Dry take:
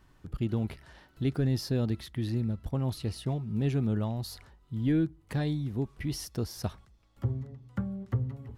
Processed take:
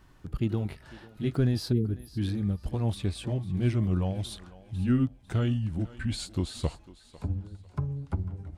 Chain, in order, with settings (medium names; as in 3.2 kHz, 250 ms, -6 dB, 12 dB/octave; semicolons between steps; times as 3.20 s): pitch bend over the whole clip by -6 st starting unshifted; spectral selection erased 1.72–2.18 s, 470–9900 Hz; thinning echo 499 ms, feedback 29%, high-pass 320 Hz, level -16.5 dB; trim +3.5 dB